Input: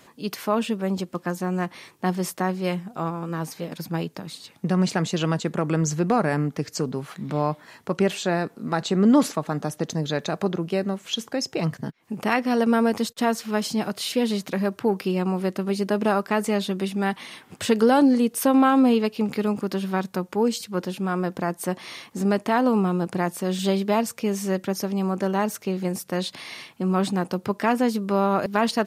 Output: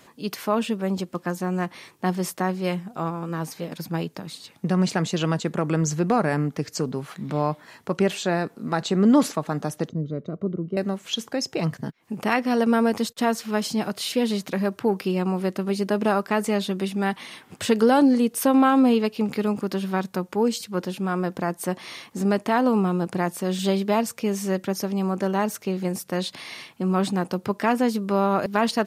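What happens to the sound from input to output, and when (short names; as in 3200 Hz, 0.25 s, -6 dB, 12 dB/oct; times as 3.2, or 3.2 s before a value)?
9.89–10.77 running mean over 52 samples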